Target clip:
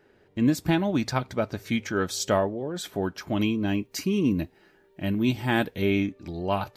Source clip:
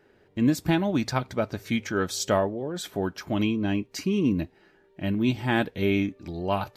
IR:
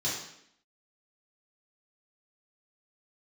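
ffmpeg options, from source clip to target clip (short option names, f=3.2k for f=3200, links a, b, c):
-filter_complex "[0:a]asettb=1/sr,asplit=3[a][b][c];[a]atrim=end=3.414[d];[b]atrim=start=3.41:end=5.82,asetpts=PTS-STARTPTS,afade=t=in:d=0.004:c=qsin,afade=t=out:st=2.406:d=0.004:c=qsin,highshelf=f=10k:g=11.5[e];[c]atrim=start=5.816[f];[d][e]acrossfade=d=0.004:c1=hsin:c2=qsin[g];[g][f]acrossfade=d=0.004:c1=qsin:c2=hsin"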